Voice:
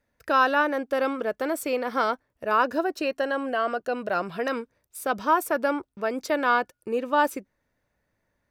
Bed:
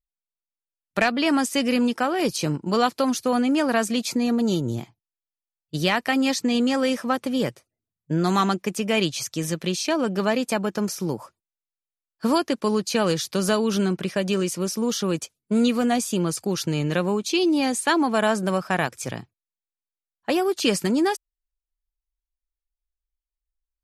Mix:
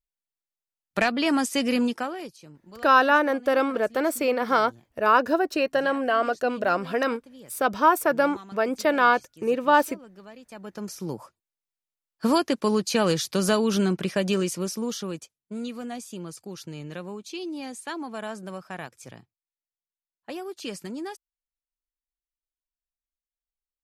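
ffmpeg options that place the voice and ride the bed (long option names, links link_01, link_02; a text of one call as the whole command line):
ffmpeg -i stem1.wav -i stem2.wav -filter_complex "[0:a]adelay=2550,volume=3dB[link_01];[1:a]volume=21dB,afade=type=out:start_time=1.81:duration=0.51:silence=0.0841395,afade=type=in:start_time=10.48:duration=1.17:silence=0.0707946,afade=type=out:start_time=14.28:duration=1.05:silence=0.223872[link_02];[link_01][link_02]amix=inputs=2:normalize=0" out.wav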